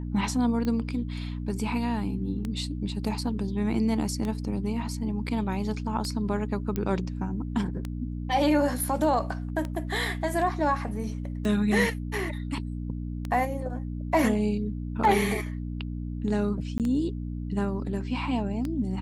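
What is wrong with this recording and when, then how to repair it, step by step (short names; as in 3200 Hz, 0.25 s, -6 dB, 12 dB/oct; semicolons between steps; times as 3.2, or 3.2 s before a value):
hum 60 Hz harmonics 5 -33 dBFS
tick 33 1/3 rpm -19 dBFS
6.76 pop -16 dBFS
16.78–16.8 gap 18 ms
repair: de-click; de-hum 60 Hz, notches 5; interpolate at 16.78, 18 ms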